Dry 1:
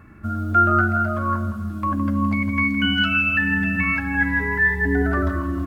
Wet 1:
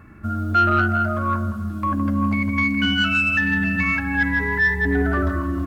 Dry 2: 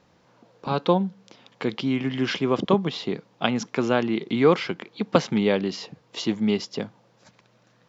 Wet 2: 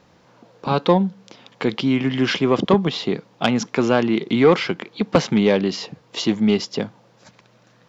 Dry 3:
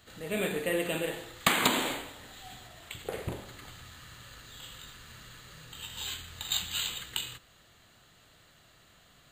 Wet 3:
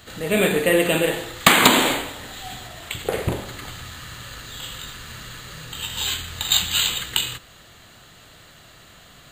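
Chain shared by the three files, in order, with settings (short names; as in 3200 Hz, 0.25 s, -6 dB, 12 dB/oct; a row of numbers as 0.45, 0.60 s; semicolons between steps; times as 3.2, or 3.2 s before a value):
soft clip -10.5 dBFS; match loudness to -20 LUFS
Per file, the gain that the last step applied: +1.0, +6.0, +12.5 dB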